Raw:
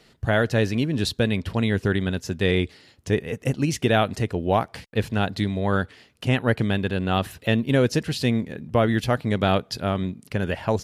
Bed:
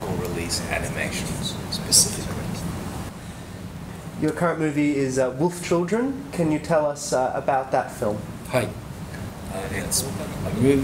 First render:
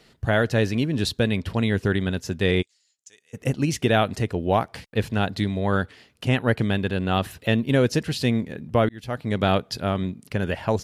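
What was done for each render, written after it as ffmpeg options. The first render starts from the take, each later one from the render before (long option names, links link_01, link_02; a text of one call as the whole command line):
ffmpeg -i in.wav -filter_complex "[0:a]asplit=3[link_01][link_02][link_03];[link_01]afade=type=out:start_time=2.61:duration=0.02[link_04];[link_02]bandpass=frequency=7000:width_type=q:width=4.7,afade=type=in:start_time=2.61:duration=0.02,afade=type=out:start_time=3.33:duration=0.02[link_05];[link_03]afade=type=in:start_time=3.33:duration=0.02[link_06];[link_04][link_05][link_06]amix=inputs=3:normalize=0,asplit=2[link_07][link_08];[link_07]atrim=end=8.89,asetpts=PTS-STARTPTS,afade=type=out:start_time=8.886:duration=0.004:curve=hsin[link_09];[link_08]atrim=start=8.89,asetpts=PTS-STARTPTS,afade=type=in:duration=0.52[link_10];[link_09][link_10]concat=n=2:v=0:a=1" out.wav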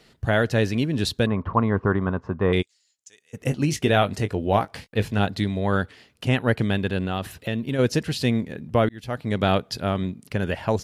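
ffmpeg -i in.wav -filter_complex "[0:a]asettb=1/sr,asplit=3[link_01][link_02][link_03];[link_01]atrim=end=1.264[link_04];[link_02]atrim=start=1.26:end=2.53,asetpts=PTS-STARTPTS,afade=type=in:duration=0.004:curve=qsin,afade=type=out:start_time=1.266:duration=0.004:curve=qsin,lowpass=frequency=1100:width_type=q:width=7[link_05];[link_03]atrim=start=2.526[link_06];[link_04][link_05]acrossfade=duration=0.004:curve1=hsin:curve2=qsin[link_07];[link_07][link_06]acrossfade=duration=0.004:curve1=qsin:curve2=hsin,asettb=1/sr,asplit=3[link_08][link_09][link_10];[link_08]atrim=end=3.414[link_11];[link_09]atrim=start=3.41:end=5.27,asetpts=PTS-STARTPTS,afade=type=in:duration=0.004:curve=qsin,afade=type=out:start_time=1.856:duration=0.004:curve=qsin,asplit=2[link_12][link_13];[link_13]adelay=20,volume=-10.5dB[link_14];[link_12][link_14]amix=inputs=2:normalize=0,atrim=end_sample=82026[link_15];[link_10]atrim=start=5.266[link_16];[link_11][link_15]acrossfade=duration=0.004:curve1=hsin:curve2=qsin[link_17];[link_17][link_16]acrossfade=duration=0.004:curve1=qsin:curve2=hsin,asplit=3[link_18][link_19][link_20];[link_18]afade=type=out:start_time=7.05:duration=0.02[link_21];[link_19]acompressor=threshold=-23dB:ratio=3:attack=3.2:release=140:knee=1:detection=peak,afade=type=in:start_time=7.05:duration=0.02,afade=type=out:start_time=7.78:duration=0.02[link_22];[link_20]afade=type=in:start_time=7.78:duration=0.02[link_23];[link_21][link_22][link_23]amix=inputs=3:normalize=0" out.wav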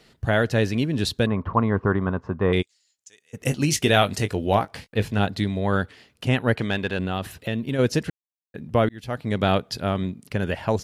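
ffmpeg -i in.wav -filter_complex "[0:a]asettb=1/sr,asplit=3[link_01][link_02][link_03];[link_01]atrim=end=3.434[link_04];[link_02]atrim=start=3.43:end=4.55,asetpts=PTS-STARTPTS,afade=type=in:duration=0.004:curve=qsin,afade=type=out:start_time=1.116:duration=0.004:curve=qsin,highshelf=frequency=2600:gain=8.5[link_05];[link_03]atrim=start=4.546[link_06];[link_04][link_05]acrossfade=duration=0.004:curve1=hsin:curve2=qsin[link_07];[link_07][link_06]acrossfade=duration=0.004:curve1=qsin:curve2=hsin,asettb=1/sr,asplit=3[link_08][link_09][link_10];[link_08]atrim=end=6.564[link_11];[link_09]atrim=start=6.56:end=6.99,asetpts=PTS-STARTPTS,afade=type=in:duration=0.004:curve=qsin,afade=type=out:start_time=0.426:duration=0.004:curve=qsin,asplit=2[link_12][link_13];[link_13]highpass=frequency=720:poles=1,volume=8dB,asoftclip=type=tanh:threshold=-11.5dB[link_14];[link_12][link_14]amix=inputs=2:normalize=0,lowpass=frequency=4800:poles=1,volume=-6dB[link_15];[link_10]atrim=start=6.986[link_16];[link_11][link_15]acrossfade=duration=0.004:curve1=hsin:curve2=qsin[link_17];[link_17][link_16]acrossfade=duration=0.004:curve1=qsin:curve2=hsin,asplit=3[link_18][link_19][link_20];[link_18]atrim=end=8.1,asetpts=PTS-STARTPTS,afade=type=out:start_time=8.096:duration=0.004:curve=hsin[link_21];[link_19]atrim=start=8.1:end=8.54,asetpts=PTS-STARTPTS,volume=0[link_22];[link_20]atrim=start=8.54,asetpts=PTS-STARTPTS,afade=type=in:duration=0.004:curve=hsin[link_23];[link_21][link_22][link_23]concat=n=3:v=0:a=1" out.wav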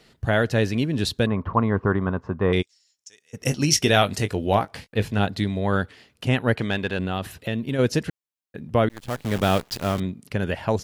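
ffmpeg -i in.wav -filter_complex "[0:a]asettb=1/sr,asplit=3[link_01][link_02][link_03];[link_01]atrim=end=2.424[link_04];[link_02]atrim=start=2.42:end=4.02,asetpts=PTS-STARTPTS,afade=type=in:duration=0.004:curve=qsin,afade=type=out:start_time=1.596:duration=0.004:curve=qsin,equalizer=frequency=5500:width=7.5:gain=12.5[link_05];[link_03]atrim=start=4.016[link_06];[link_04][link_05]acrossfade=duration=0.004:curve1=hsin:curve2=qsin[link_07];[link_07][link_06]acrossfade=duration=0.004:curve1=qsin:curve2=hsin,asettb=1/sr,asplit=3[link_08][link_09][link_10];[link_08]atrim=end=8.894[link_11];[link_09]atrim=start=8.89:end=10,asetpts=PTS-STARTPTS,afade=type=in:duration=0.004:curve=qsin,afade=type=out:start_time=1.106:duration=0.004:curve=qsin,acrusher=bits=6:dc=4:mix=0:aa=0.000001[link_12];[link_10]atrim=start=9.996[link_13];[link_11][link_12]acrossfade=duration=0.004:curve1=hsin:curve2=qsin[link_14];[link_14][link_13]acrossfade=duration=0.004:curve1=qsin:curve2=hsin" out.wav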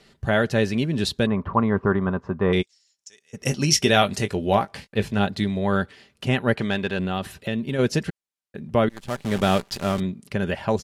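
ffmpeg -i in.wav -af "lowpass=12000,aecho=1:1:5.1:0.33" out.wav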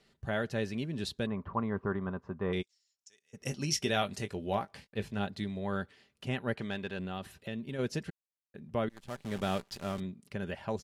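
ffmpeg -i in.wav -af "volume=-12.5dB" out.wav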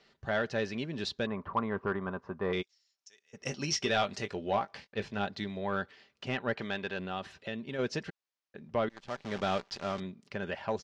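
ffmpeg -i in.wav -filter_complex "[0:a]asplit=2[link_01][link_02];[link_02]highpass=frequency=720:poles=1,volume=12dB,asoftclip=type=tanh:threshold=-16.5dB[link_03];[link_01][link_03]amix=inputs=2:normalize=0,lowpass=frequency=1800:poles=1,volume=-6dB,lowpass=frequency=5800:width_type=q:width=1.8" out.wav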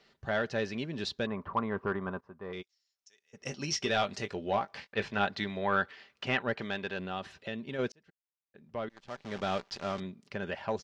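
ffmpeg -i in.wav -filter_complex "[0:a]asettb=1/sr,asplit=3[link_01][link_02][link_03];[link_01]atrim=end=4.774[link_04];[link_02]atrim=start=4.77:end=6.43,asetpts=PTS-STARTPTS,afade=type=in:duration=0.004:curve=qsin,afade=type=out:start_time=1.656:duration=0.004:curve=qsin,equalizer=frequency=1600:width=0.45:gain=7[link_05];[link_03]atrim=start=6.426[link_06];[link_04][link_05]acrossfade=duration=0.004:curve1=hsin:curve2=qsin[link_07];[link_07][link_06]acrossfade=duration=0.004:curve1=qsin:curve2=hsin,asplit=3[link_08][link_09][link_10];[link_08]atrim=end=2.21,asetpts=PTS-STARTPTS,afade=type=out:start_time=2.206:duration=0.004:curve=hsin:silence=0.237137[link_11];[link_09]atrim=start=2.21:end=7.92,asetpts=PTS-STARTPTS,afade=type=in:duration=1.83:silence=0.237137,afade=type=out:start_time=5.706:duration=0.004:curve=hsin[link_12];[link_10]atrim=start=7.92,asetpts=PTS-STARTPTS,afade=type=in:duration=1.84[link_13];[link_11][link_12][link_13]concat=n=3:v=0:a=1" out.wav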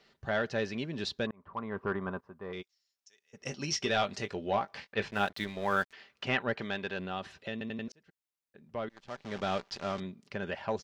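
ffmpeg -i in.wav -filter_complex "[0:a]asettb=1/sr,asplit=3[link_01][link_02][link_03];[link_01]atrim=end=5.114[link_04];[link_02]atrim=start=5.11:end=5.93,asetpts=PTS-STARTPTS,afade=type=in:duration=0.004:curve=qsin,afade=type=out:start_time=0.816:duration=0.004:curve=qsin,aeval=exprs='sgn(val(0))*max(abs(val(0))-0.00501,0)':channel_layout=same[link_05];[link_03]atrim=start=5.926[link_06];[link_04][link_05]acrossfade=duration=0.004:curve1=hsin:curve2=qsin[link_07];[link_07][link_06]acrossfade=duration=0.004:curve1=qsin:curve2=hsin,asplit=6[link_08][link_09][link_10][link_11][link_12][link_13];[link_08]atrim=end=1.31,asetpts=PTS-STARTPTS,afade=type=out:start_time=1.306:duration=0.004:curve=hsin[link_14];[link_09]atrim=start=1.31:end=7.612,asetpts=PTS-STARTPTS,afade=type=in:duration=0.62[link_15];[link_10]atrim=start=7.518:end=7.612[link_16];[link_11]atrim=start=7.518:end=7.612[link_17];[link_12]atrim=start=7.518:end=7.612[link_18];[link_13]atrim=start=7.878[link_19];[link_14][link_15]concat=n=2:v=0:a=1[link_20];[link_20][link_16]acrossfade=duration=0.004:curve1=hsin:curve2=hsin[link_21];[link_21][link_17]acrossfade=duration=0.004:curve1=hsin:curve2=hsin[link_22];[link_22][link_18]acrossfade=duration=0.004:curve1=hsin:curve2=hsin[link_23];[link_23][link_19]acrossfade=duration=0.004:curve1=hsin:curve2=hsin" out.wav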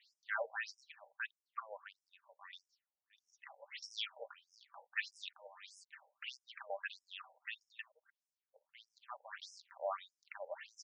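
ffmpeg -i in.wav -af "afftfilt=real='re*between(b*sr/1024,650*pow(7200/650,0.5+0.5*sin(2*PI*1.6*pts/sr))/1.41,650*pow(7200/650,0.5+0.5*sin(2*PI*1.6*pts/sr))*1.41)':imag='im*between(b*sr/1024,650*pow(7200/650,0.5+0.5*sin(2*PI*1.6*pts/sr))/1.41,650*pow(7200/650,0.5+0.5*sin(2*PI*1.6*pts/sr))*1.41)':win_size=1024:overlap=0.75" out.wav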